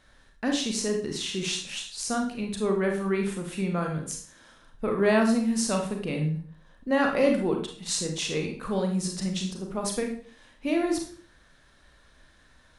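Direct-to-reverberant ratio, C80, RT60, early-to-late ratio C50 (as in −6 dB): 2.0 dB, 10.5 dB, 0.45 s, 6.0 dB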